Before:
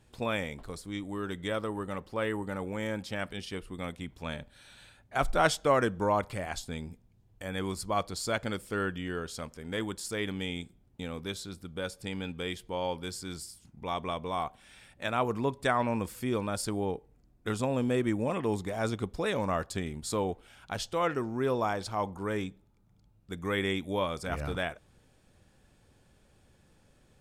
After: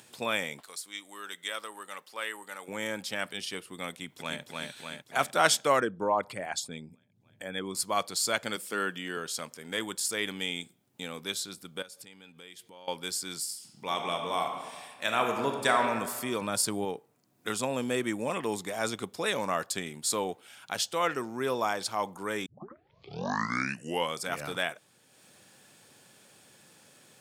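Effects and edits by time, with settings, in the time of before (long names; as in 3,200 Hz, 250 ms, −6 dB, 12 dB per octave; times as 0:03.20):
0:00.60–0:02.68: high-pass filter 1,500 Hz 6 dB per octave
0:03.89–0:04.41: delay throw 300 ms, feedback 65%, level −2 dB
0:05.80–0:07.75: spectral envelope exaggerated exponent 1.5
0:08.56–0:09.17: high-pass filter 140 Hz 24 dB per octave
0:11.82–0:12.88: downward compressor 4 to 1, threshold −50 dBFS
0:13.40–0:15.85: thrown reverb, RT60 1.5 s, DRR 3 dB
0:16.41–0:16.85: low-shelf EQ 200 Hz +8 dB
0:22.46: tape start 1.73 s
whole clip: high-pass filter 120 Hz 24 dB per octave; spectral tilt +2.5 dB per octave; upward compression, threshold −51 dBFS; level +1.5 dB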